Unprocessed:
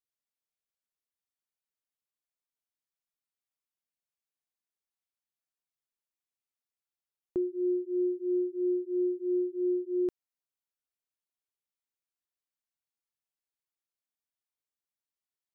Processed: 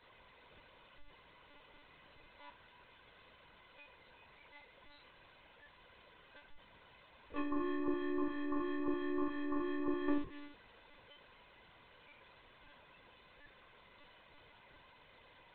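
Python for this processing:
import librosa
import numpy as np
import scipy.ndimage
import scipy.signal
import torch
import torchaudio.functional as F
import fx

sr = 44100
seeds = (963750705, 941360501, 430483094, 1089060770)

y = fx.delta_mod(x, sr, bps=32000, step_db=-35.5)
y = fx.noise_reduce_blind(y, sr, reduce_db=28)
y = fx.highpass(y, sr, hz=54.0, slope=6)
y = y + 0.62 * np.pad(y, (int(2.0 * sr / 1000.0), 0))[:len(y)]
y = 10.0 ** (-37.0 / 20.0) * np.tanh(y / 10.0 ** (-37.0 / 20.0))
y = fx.air_absorb(y, sr, metres=140.0)
y = y + 10.0 ** (-21.5 / 20.0) * np.pad(y, (int(300 * sr / 1000.0), 0))[:len(y)]
y = fx.room_shoebox(y, sr, seeds[0], volume_m3=230.0, walls='furnished', distance_m=5.6)
y = fx.lpc_monotone(y, sr, seeds[1], pitch_hz=290.0, order=16)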